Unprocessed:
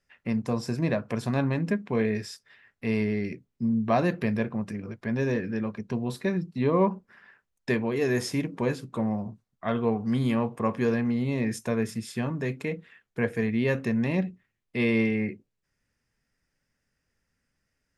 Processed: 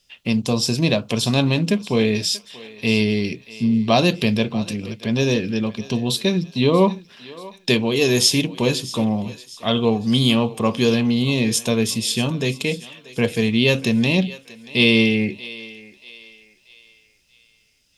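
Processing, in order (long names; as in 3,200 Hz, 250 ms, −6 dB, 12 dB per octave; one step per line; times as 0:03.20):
high shelf with overshoot 2,400 Hz +10 dB, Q 3
feedback echo with a high-pass in the loop 634 ms, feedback 43%, high-pass 580 Hz, level −16.5 dB
level +7.5 dB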